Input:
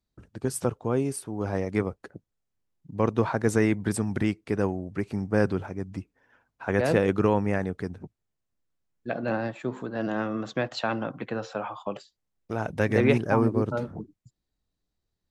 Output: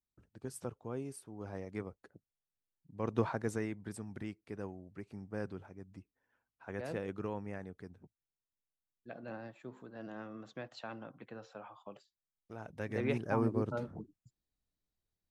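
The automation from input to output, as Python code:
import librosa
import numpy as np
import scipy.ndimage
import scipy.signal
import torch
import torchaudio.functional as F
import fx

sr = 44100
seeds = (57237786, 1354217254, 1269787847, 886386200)

y = fx.gain(x, sr, db=fx.line((2.98, -15.0), (3.18, -7.0), (3.73, -17.0), (12.72, -17.0), (13.45, -8.5)))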